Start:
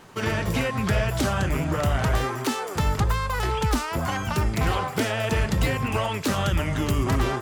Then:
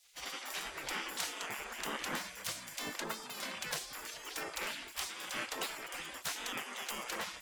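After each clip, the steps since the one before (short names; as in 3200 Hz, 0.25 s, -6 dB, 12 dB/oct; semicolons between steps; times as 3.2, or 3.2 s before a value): spectral gate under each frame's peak -20 dB weak; gain -5 dB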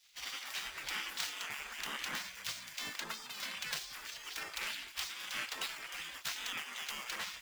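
median filter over 5 samples; passive tone stack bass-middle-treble 5-5-5; gain +10.5 dB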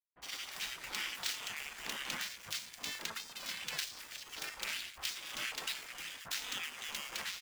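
crossover distortion -52 dBFS; bands offset in time lows, highs 60 ms, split 1300 Hz; gain +2.5 dB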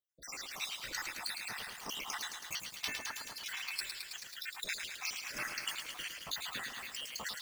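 random spectral dropouts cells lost 72%; lo-fi delay 0.108 s, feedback 80%, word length 10-bit, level -6 dB; gain +4.5 dB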